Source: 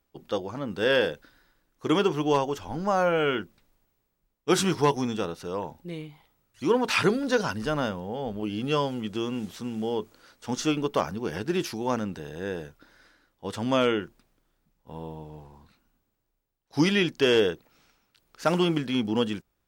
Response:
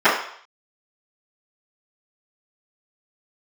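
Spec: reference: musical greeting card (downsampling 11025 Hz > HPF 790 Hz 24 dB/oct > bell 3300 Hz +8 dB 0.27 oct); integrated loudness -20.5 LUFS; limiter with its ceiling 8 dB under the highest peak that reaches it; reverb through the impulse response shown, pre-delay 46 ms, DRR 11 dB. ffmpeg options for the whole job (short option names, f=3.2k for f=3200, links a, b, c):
-filter_complex "[0:a]alimiter=limit=-19dB:level=0:latency=1,asplit=2[a][b];[1:a]atrim=start_sample=2205,adelay=46[c];[b][c]afir=irnorm=-1:irlink=0,volume=-36.5dB[d];[a][d]amix=inputs=2:normalize=0,aresample=11025,aresample=44100,highpass=f=790:w=0.5412,highpass=f=790:w=1.3066,equalizer=f=3.3k:t=o:w=0.27:g=8,volume=13.5dB"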